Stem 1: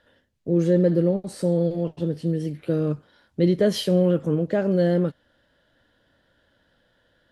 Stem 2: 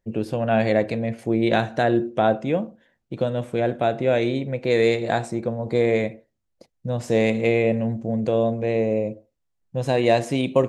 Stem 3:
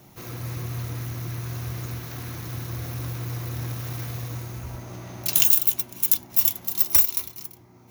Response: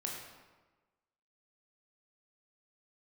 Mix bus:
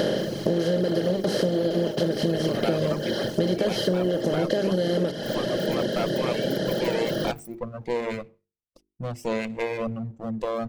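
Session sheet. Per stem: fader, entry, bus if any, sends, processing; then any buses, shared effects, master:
0.0 dB, 0.00 s, send −10.5 dB, compressor on every frequency bin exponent 0.2; parametric band 9,300 Hz −7 dB 0.73 octaves
−4.0 dB, 2.15 s, no send, lower of the sound and its delayed copy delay 0.37 ms
−15.5 dB, 0.00 s, no send, comb filter 6.8 ms, depth 74%; compressor whose output falls as the input rises −27 dBFS, ratio −0.5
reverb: on, RT60 1.3 s, pre-delay 18 ms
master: reverb reduction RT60 1.3 s; mains-hum notches 50/100/150/200/250/300/350/400/450 Hz; downward compressor 6 to 1, threshold −20 dBFS, peak gain reduction 10 dB

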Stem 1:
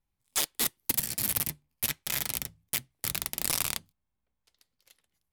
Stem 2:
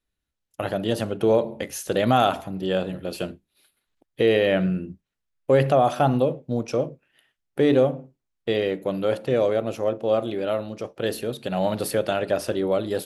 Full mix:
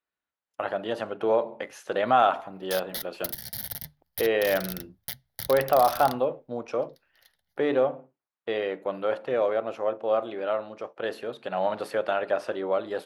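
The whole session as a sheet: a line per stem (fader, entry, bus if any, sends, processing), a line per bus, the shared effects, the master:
+2.0 dB, 2.35 s, no send, downward compressor 4 to 1, threshold −29 dBFS, peak gain reduction 7 dB; phaser with its sweep stopped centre 1,700 Hz, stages 8
+2.0 dB, 0.00 s, no send, resonant band-pass 1,100 Hz, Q 1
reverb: not used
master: no processing

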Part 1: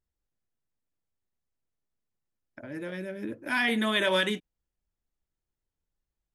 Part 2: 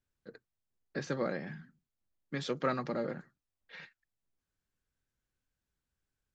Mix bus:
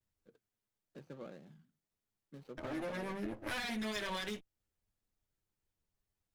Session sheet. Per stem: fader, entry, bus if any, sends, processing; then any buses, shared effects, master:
+1.0 dB, 0.00 s, no send, lower of the sound and its delayed copy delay 9.6 ms; downward compressor 10 to 1, threshold −37 dBFS, peak gain reduction 14.5 dB
−14.0 dB, 0.00 s, no send, running median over 25 samples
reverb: not used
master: no processing

